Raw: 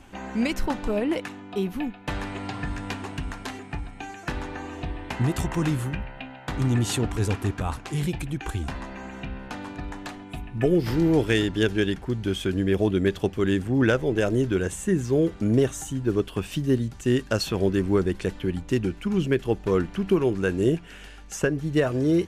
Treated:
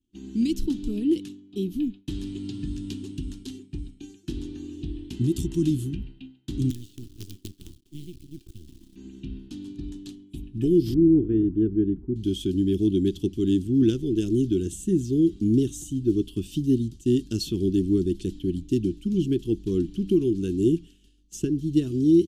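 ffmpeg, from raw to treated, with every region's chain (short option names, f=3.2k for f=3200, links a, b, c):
-filter_complex "[0:a]asettb=1/sr,asplit=3[a][b][c];[a]atrim=end=6.704[d];[b]atrim=start=6.7:end=8.96,asetpts=PTS-STARTPTS,afade=t=in:d=0.004:c=qsin,afade=t=out:st=2.256:d=0.004:c=qsin,lowpass=f=4k:p=1,acrossover=split=130|1100|3100[e][f][g][h];[e]acompressor=threshold=-37dB:ratio=3[i];[f]acompressor=threshold=-40dB:ratio=3[j];[g]acompressor=threshold=-45dB:ratio=3[k];[h]acompressor=threshold=-56dB:ratio=3[l];[i][j][k][l]amix=inputs=4:normalize=0,acrusher=bits=5:dc=4:mix=0:aa=0.000001[m];[c]atrim=start=8.956[n];[d][m]acrossfade=d=0.004:c1=hsin:c2=qsin[o];[o][n]acrossfade=d=0.004:c1=qsin:c2=hsin,asettb=1/sr,asplit=3[p][q][r];[p]atrim=end=10.944[s];[q]atrim=start=10.94:end=12.16,asetpts=PTS-STARTPTS,afade=t=in:d=0.004:c=qsin,afade=t=out:st=1.216:d=0.004:c=qsin,lowpass=f=1.4k:w=0.5412,lowpass=f=1.4k:w=1.3066,bandreject=f=117.6:t=h:w=4,bandreject=f=235.2:t=h:w=4,bandreject=f=352.8:t=h:w=4,bandreject=f=470.4:t=h:w=4,bandreject=f=588:t=h:w=4,bandreject=f=705.6:t=h:w=4,bandreject=f=823.2:t=h:w=4,bandreject=f=940.8:t=h:w=4,bandreject=f=1.0584k:t=h:w=4,bandreject=f=1.176k:t=h:w=4[t];[r]atrim=start=12.156[u];[s][t]acrossfade=d=0.004:c1=hsin:c2=qsin[v];[v][u]acrossfade=d=0.004:c1=qsin:c2=hsin,agate=range=-33dB:threshold=-33dB:ratio=3:detection=peak,firequalizer=gain_entry='entry(160,0);entry(340,7);entry(540,-30);entry(2100,-22);entry(3100,-1)':delay=0.05:min_phase=1,volume=-1.5dB"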